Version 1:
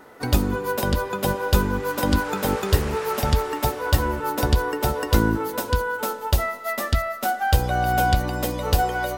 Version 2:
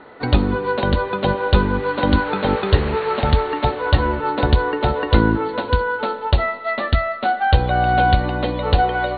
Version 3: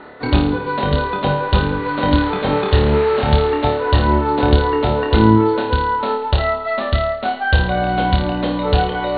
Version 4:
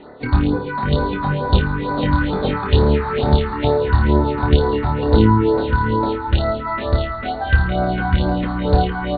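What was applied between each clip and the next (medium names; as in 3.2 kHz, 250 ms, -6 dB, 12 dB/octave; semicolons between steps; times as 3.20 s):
Chebyshev low-pass 4.4 kHz, order 10; trim +5 dB
reverse; upward compressor, threshold -19 dBFS; reverse; flutter echo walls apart 4.7 m, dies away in 0.52 s; trim -1 dB
resampled via 11.025 kHz; echo that smears into a reverb 672 ms, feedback 42%, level -9 dB; phase shifter stages 4, 2.2 Hz, lowest notch 470–2900 Hz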